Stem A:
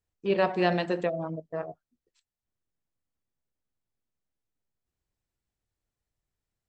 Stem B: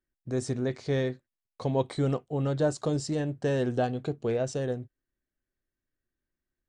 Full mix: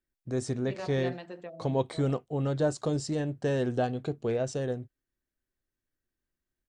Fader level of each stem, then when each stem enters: −14.5, −1.0 decibels; 0.40, 0.00 seconds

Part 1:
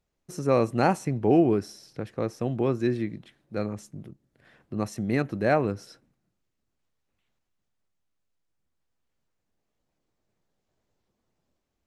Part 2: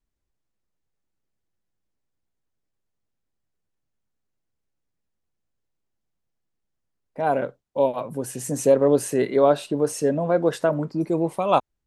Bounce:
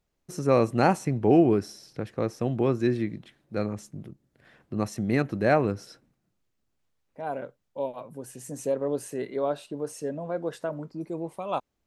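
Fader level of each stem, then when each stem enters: +1.0, −10.5 decibels; 0.00, 0.00 seconds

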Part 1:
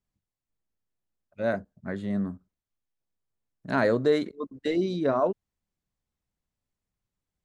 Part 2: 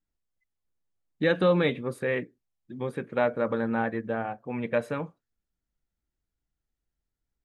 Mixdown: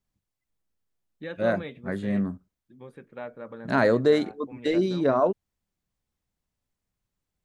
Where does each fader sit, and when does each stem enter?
+2.5, −13.0 decibels; 0.00, 0.00 seconds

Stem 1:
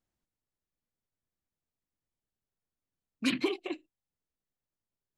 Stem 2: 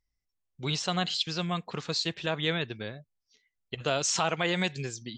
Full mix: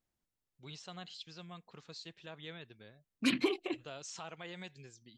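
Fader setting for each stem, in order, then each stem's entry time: −1.0, −18.5 decibels; 0.00, 0.00 seconds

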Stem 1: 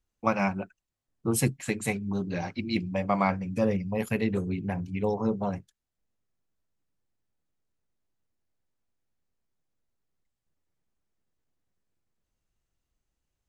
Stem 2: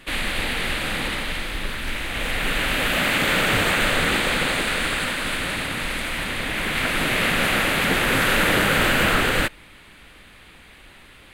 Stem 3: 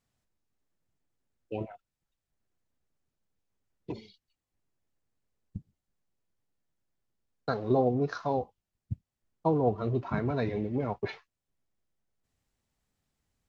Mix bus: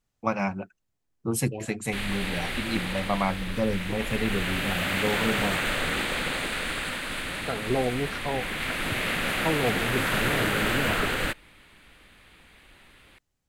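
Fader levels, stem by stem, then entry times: −1.0, −7.0, −1.0 decibels; 0.00, 1.85, 0.00 seconds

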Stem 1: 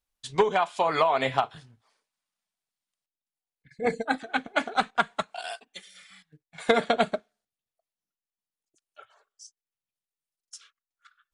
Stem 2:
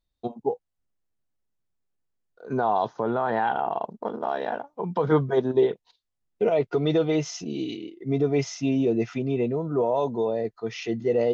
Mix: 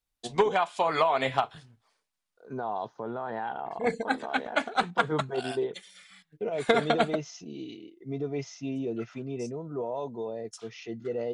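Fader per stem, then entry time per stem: −1.5, −9.5 decibels; 0.00, 0.00 seconds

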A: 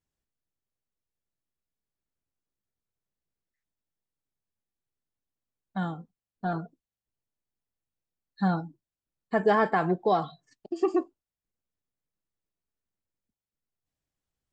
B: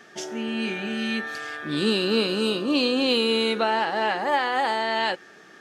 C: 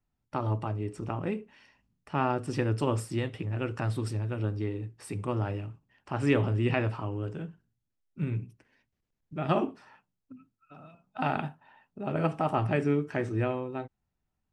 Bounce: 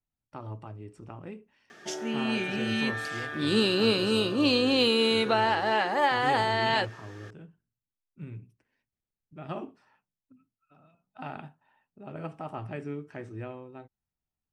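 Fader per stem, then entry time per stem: muted, −1.5 dB, −10.0 dB; muted, 1.70 s, 0.00 s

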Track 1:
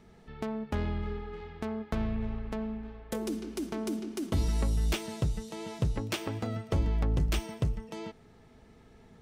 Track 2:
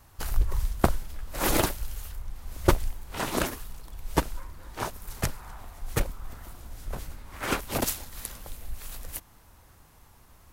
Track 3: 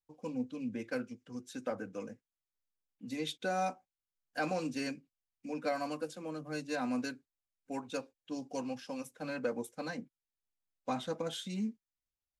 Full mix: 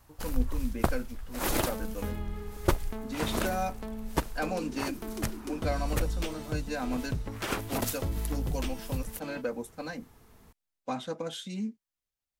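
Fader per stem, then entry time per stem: −4.5, −4.5, +1.5 decibels; 1.30, 0.00, 0.00 seconds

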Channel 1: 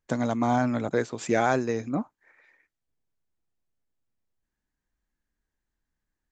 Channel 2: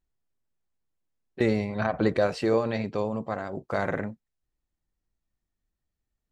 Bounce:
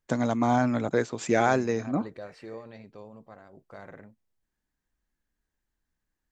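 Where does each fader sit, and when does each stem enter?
+0.5, −17.5 decibels; 0.00, 0.00 seconds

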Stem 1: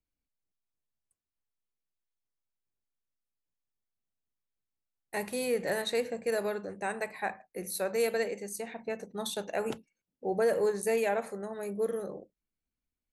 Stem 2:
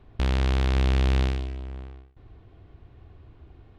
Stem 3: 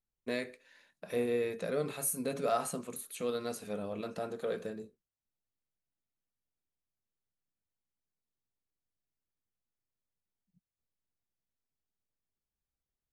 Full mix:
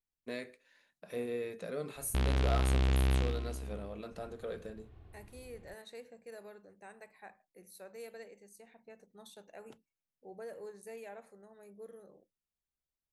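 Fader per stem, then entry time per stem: −18.5, −6.5, −5.5 decibels; 0.00, 1.95, 0.00 seconds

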